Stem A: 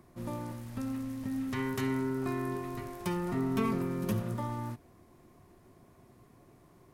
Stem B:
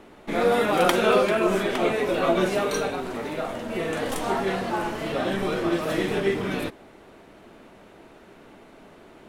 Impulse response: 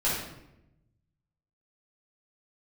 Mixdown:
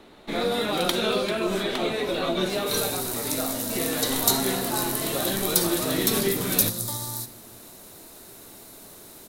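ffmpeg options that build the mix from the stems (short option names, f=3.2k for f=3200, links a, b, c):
-filter_complex "[0:a]highshelf=f=4.8k:g=11,aexciter=amount=3.1:drive=9.9:freq=3.9k,adelay=2500,volume=-1.5dB,asplit=2[a][b];[b]volume=-22dB[c];[1:a]highshelf=f=10k:g=6.5,volume=-2dB[d];[2:a]atrim=start_sample=2205[e];[c][e]afir=irnorm=-1:irlink=0[f];[a][d][f]amix=inputs=3:normalize=0,equalizer=f=3.9k:w=3.8:g=12,acrossover=split=360|3000[g][h][i];[h]acompressor=threshold=-26dB:ratio=6[j];[g][j][i]amix=inputs=3:normalize=0"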